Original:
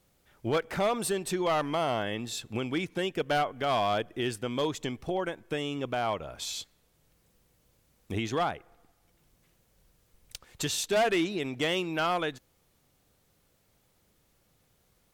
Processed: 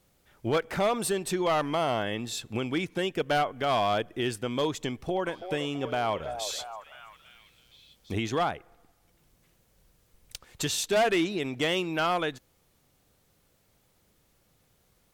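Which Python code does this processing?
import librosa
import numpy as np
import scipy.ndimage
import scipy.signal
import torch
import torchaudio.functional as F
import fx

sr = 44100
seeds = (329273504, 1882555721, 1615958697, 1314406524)

y = fx.echo_stepped(x, sr, ms=330, hz=600.0, octaves=0.7, feedback_pct=70, wet_db=-7, at=(5.25, 8.12), fade=0.02)
y = F.gain(torch.from_numpy(y), 1.5).numpy()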